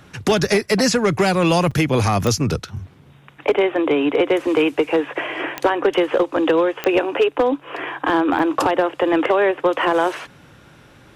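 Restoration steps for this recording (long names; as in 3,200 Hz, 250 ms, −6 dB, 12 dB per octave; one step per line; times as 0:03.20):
clipped peaks rebuilt −9 dBFS
click removal
repair the gap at 0:01.71/0:08.39, 4.9 ms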